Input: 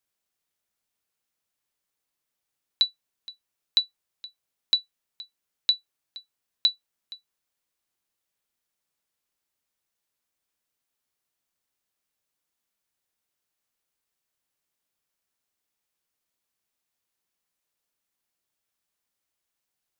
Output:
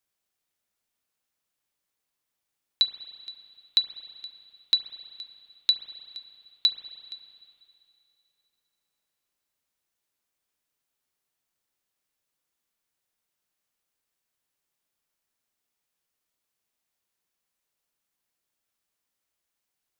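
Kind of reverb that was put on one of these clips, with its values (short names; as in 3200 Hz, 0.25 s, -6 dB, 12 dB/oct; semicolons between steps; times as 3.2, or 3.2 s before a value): spring tank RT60 2.7 s, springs 33/38 ms, chirp 35 ms, DRR 9 dB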